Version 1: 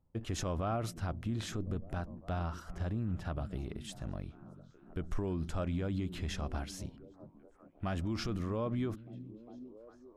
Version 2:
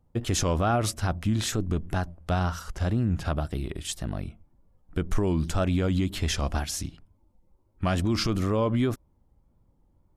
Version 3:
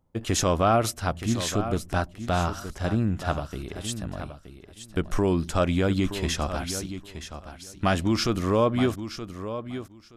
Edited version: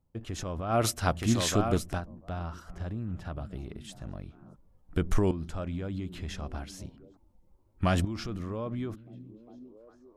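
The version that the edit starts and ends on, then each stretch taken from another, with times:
1
0.76–1.93 s: from 3, crossfade 0.16 s
4.56–5.31 s: from 2
7.17–8.05 s: from 2

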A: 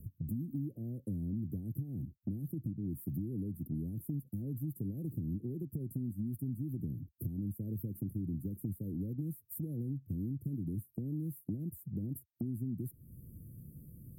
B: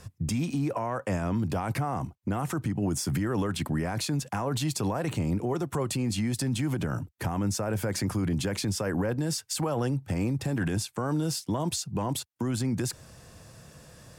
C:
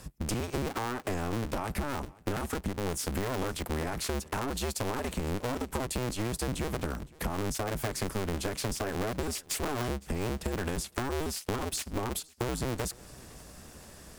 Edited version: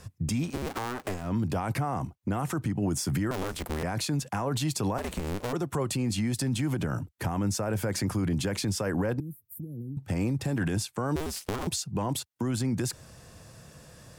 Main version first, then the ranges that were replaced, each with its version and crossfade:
B
0.52–1.22 s: from C, crossfade 0.24 s
3.31–3.83 s: from C
4.98–5.53 s: from C
9.20–9.97 s: from A
11.16–11.67 s: from C

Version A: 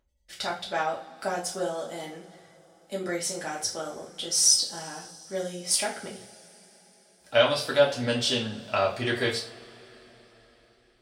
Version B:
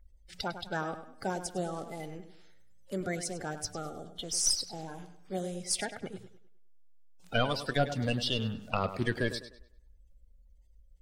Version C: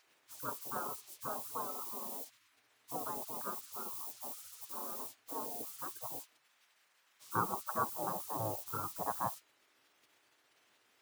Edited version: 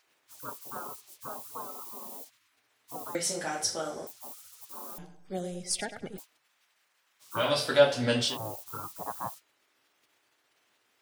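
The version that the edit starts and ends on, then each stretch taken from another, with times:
C
3.15–4.07 s: from A
4.98–6.18 s: from B
7.44–8.30 s: from A, crossfade 0.16 s

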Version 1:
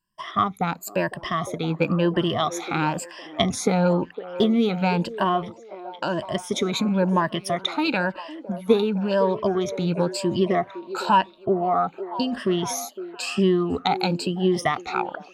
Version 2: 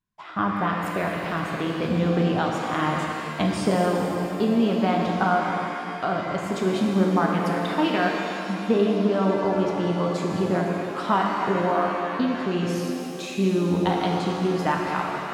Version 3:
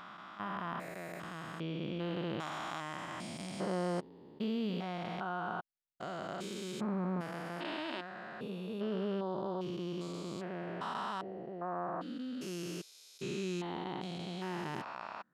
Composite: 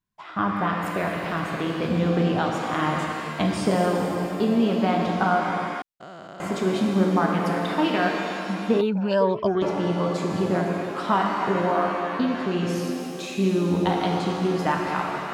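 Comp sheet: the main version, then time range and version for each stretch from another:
2
5.82–6.40 s: from 3
8.81–9.62 s: from 1

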